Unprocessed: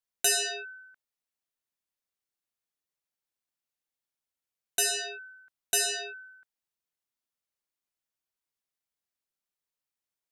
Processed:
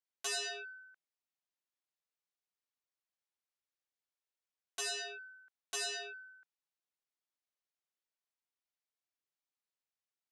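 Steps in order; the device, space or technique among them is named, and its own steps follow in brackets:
public-address speaker with an overloaded transformer (saturating transformer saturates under 3,800 Hz; band-pass filter 310–6,700 Hz)
level −5 dB

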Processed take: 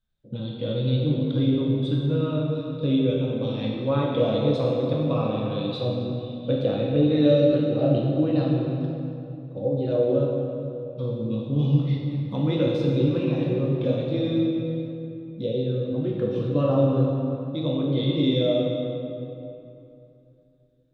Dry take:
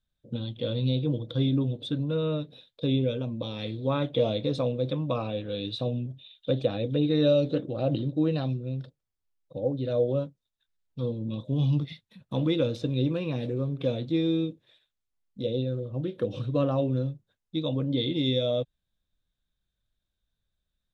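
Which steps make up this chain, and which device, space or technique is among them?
swimming-pool hall (convolution reverb RT60 2.8 s, pre-delay 9 ms, DRR −3 dB; high-shelf EQ 4,200 Hz −8 dB)

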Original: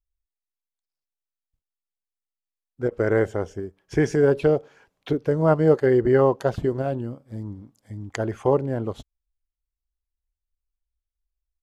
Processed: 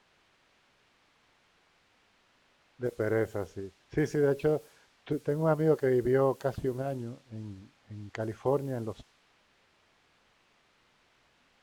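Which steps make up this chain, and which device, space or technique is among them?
cassette deck with a dynamic noise filter (white noise bed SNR 26 dB; low-pass that shuts in the quiet parts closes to 2,700 Hz, open at −19.5 dBFS)
level −8 dB

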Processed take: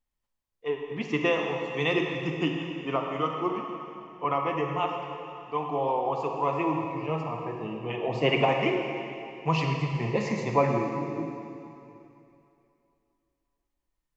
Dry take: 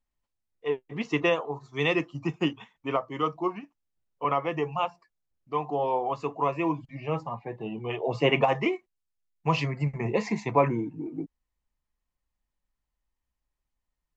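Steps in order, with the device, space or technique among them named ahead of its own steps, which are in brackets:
stairwell (convolution reverb RT60 2.8 s, pre-delay 32 ms, DRR 2 dB)
level −1.5 dB

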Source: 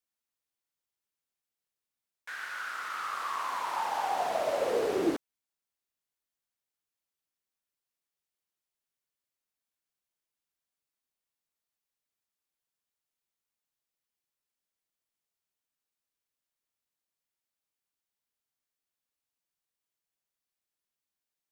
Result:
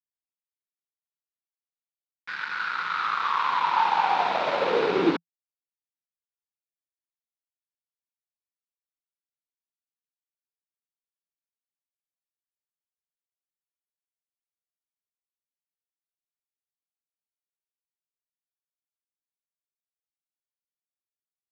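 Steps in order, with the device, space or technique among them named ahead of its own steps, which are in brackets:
blown loudspeaker (dead-zone distortion −43.5 dBFS; loudspeaker in its box 130–4,600 Hz, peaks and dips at 170 Hz +9 dB, 640 Hz −7 dB, 940 Hz +7 dB, 1,400 Hz +6 dB, 2,400 Hz +6 dB, 3,800 Hz +6 dB)
level +7 dB

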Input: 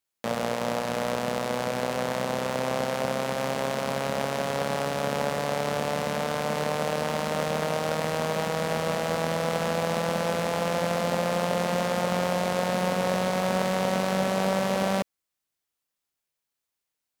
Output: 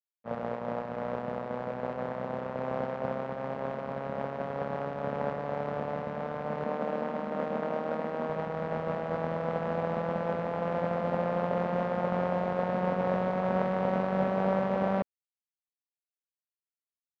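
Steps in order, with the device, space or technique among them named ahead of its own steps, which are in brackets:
hearing-loss simulation (low-pass filter 1,500 Hz 12 dB per octave; downward expander −22 dBFS)
0:06.64–0:08.30: low shelf with overshoot 170 Hz −6.5 dB, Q 3

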